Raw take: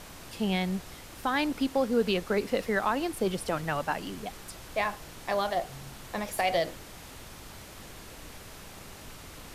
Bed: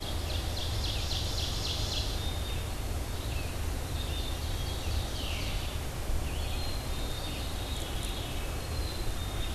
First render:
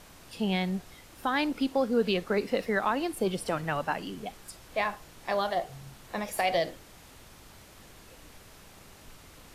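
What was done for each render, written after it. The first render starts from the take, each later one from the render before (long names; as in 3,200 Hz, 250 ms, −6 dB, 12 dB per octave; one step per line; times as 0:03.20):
noise reduction from a noise print 6 dB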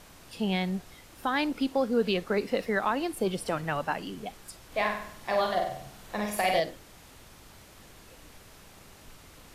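0:04.67–0:06.60: flutter between parallel walls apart 8.2 metres, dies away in 0.64 s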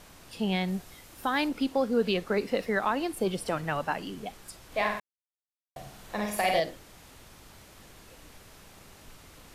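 0:00.68–0:01.49: high-shelf EQ 8,700 Hz +6.5 dB
0:05.00–0:05.76: silence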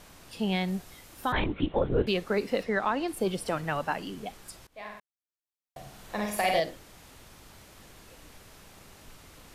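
0:01.32–0:02.07: linear-prediction vocoder at 8 kHz whisper
0:02.63–0:03.08: high-frequency loss of the air 52 metres
0:04.67–0:06.02: fade in, from −22 dB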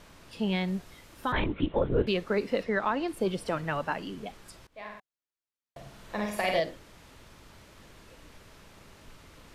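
high-shelf EQ 7,200 Hz −10.5 dB
notch filter 760 Hz, Q 12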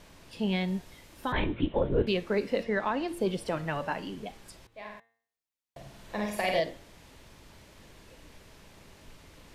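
parametric band 1,300 Hz −5 dB 0.42 octaves
hum removal 114.8 Hz, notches 35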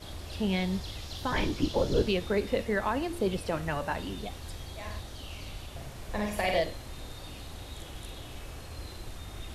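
mix in bed −8 dB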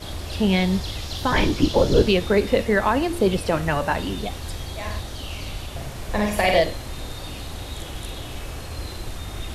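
level +9.5 dB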